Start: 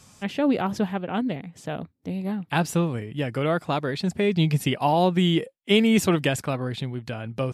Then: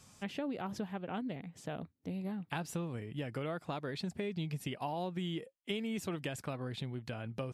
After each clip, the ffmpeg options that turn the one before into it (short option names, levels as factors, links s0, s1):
-af "acompressor=threshold=0.0398:ratio=5,volume=0.422"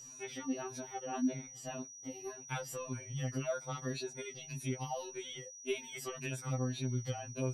-af "afftfilt=real='re*pow(10,10/40*sin(2*PI*(1.5*log(max(b,1)*sr/1024/100)/log(2)-(-1.8)*(pts-256)/sr)))':imag='im*pow(10,10/40*sin(2*PI*(1.5*log(max(b,1)*sr/1024/100)/log(2)-(-1.8)*(pts-256)/sr)))':win_size=1024:overlap=0.75,aeval=exprs='val(0)+0.00355*sin(2*PI*5800*n/s)':c=same,afftfilt=real='re*2.45*eq(mod(b,6),0)':imag='im*2.45*eq(mod(b,6),0)':win_size=2048:overlap=0.75,volume=1.12"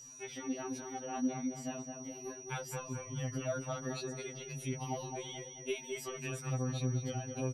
-filter_complex "[0:a]asplit=2[s0][s1];[s1]adelay=215,lowpass=f=1500:p=1,volume=0.631,asplit=2[s2][s3];[s3]adelay=215,lowpass=f=1500:p=1,volume=0.45,asplit=2[s4][s5];[s5]adelay=215,lowpass=f=1500:p=1,volume=0.45,asplit=2[s6][s7];[s7]adelay=215,lowpass=f=1500:p=1,volume=0.45,asplit=2[s8][s9];[s9]adelay=215,lowpass=f=1500:p=1,volume=0.45,asplit=2[s10][s11];[s11]adelay=215,lowpass=f=1500:p=1,volume=0.45[s12];[s0][s2][s4][s6][s8][s10][s12]amix=inputs=7:normalize=0,volume=0.891"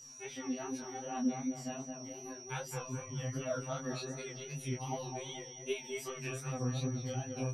-af "flanger=delay=19:depth=6:speed=2.6,volume=1.41"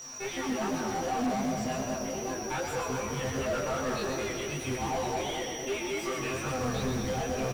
-filter_complex "[0:a]acrusher=bits=4:mode=log:mix=0:aa=0.000001,asplit=2[s0][s1];[s1]highpass=f=720:p=1,volume=39.8,asoftclip=type=tanh:threshold=0.0668[s2];[s0][s2]amix=inputs=2:normalize=0,lowpass=f=1400:p=1,volume=0.501,asplit=7[s3][s4][s5][s6][s7][s8][s9];[s4]adelay=127,afreqshift=-47,volume=0.562[s10];[s5]adelay=254,afreqshift=-94,volume=0.288[s11];[s6]adelay=381,afreqshift=-141,volume=0.146[s12];[s7]adelay=508,afreqshift=-188,volume=0.075[s13];[s8]adelay=635,afreqshift=-235,volume=0.038[s14];[s9]adelay=762,afreqshift=-282,volume=0.0195[s15];[s3][s10][s11][s12][s13][s14][s15]amix=inputs=7:normalize=0"